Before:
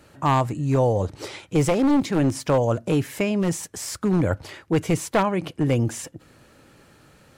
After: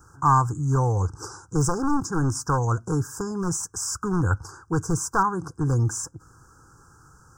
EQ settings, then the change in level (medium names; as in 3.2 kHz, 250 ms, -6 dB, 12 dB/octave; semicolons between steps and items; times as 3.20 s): Chebyshev band-stop 1.6–4.5 kHz, order 5; peaking EQ 230 Hz -12.5 dB 1.1 oct; static phaser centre 3 kHz, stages 8; +6.0 dB